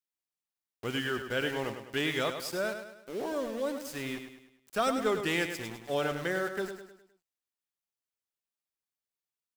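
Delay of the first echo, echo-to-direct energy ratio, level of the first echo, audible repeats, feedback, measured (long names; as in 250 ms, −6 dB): 103 ms, −7.5 dB, −8.5 dB, 4, 45%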